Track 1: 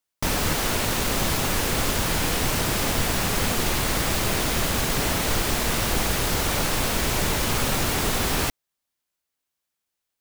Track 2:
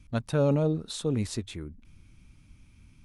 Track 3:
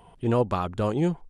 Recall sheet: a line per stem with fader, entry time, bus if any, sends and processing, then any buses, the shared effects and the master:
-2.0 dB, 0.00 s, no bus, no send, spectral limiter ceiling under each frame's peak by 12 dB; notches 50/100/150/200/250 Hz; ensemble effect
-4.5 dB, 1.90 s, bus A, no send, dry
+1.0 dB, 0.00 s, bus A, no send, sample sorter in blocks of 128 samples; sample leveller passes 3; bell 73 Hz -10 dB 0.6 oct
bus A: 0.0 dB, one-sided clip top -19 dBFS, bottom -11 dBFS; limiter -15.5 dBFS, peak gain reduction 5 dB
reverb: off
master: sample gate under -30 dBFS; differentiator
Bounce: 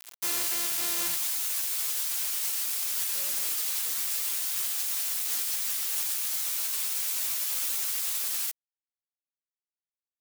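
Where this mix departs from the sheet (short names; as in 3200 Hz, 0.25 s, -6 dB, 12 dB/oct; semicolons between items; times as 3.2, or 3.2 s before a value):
stem 2: entry 1.90 s -> 2.80 s; stem 3 +1.0 dB -> +9.0 dB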